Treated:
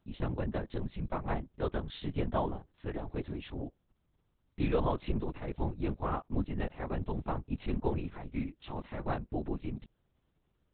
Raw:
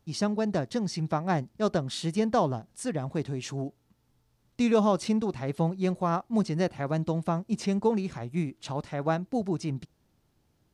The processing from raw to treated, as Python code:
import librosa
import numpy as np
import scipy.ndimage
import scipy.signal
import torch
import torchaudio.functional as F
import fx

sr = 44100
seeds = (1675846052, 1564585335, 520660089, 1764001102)

y = fx.peak_eq(x, sr, hz=570.0, db=-6.0, octaves=0.24)
y = fx.lpc_vocoder(y, sr, seeds[0], excitation='whisper', order=8)
y = y * 10.0 ** (-6.0 / 20.0)